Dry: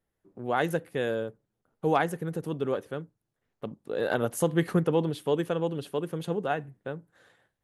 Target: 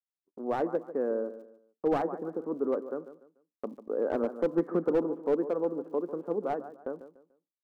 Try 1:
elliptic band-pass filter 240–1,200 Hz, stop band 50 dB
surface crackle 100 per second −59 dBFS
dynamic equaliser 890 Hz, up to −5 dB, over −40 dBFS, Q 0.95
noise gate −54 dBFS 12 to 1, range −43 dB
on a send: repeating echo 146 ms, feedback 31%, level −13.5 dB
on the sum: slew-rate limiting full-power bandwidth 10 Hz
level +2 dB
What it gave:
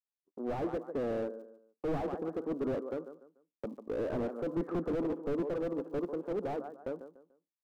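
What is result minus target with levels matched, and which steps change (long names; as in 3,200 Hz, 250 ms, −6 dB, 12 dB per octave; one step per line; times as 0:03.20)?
slew-rate limiting: distortion +16 dB
change: slew-rate limiting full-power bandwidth 35.5 Hz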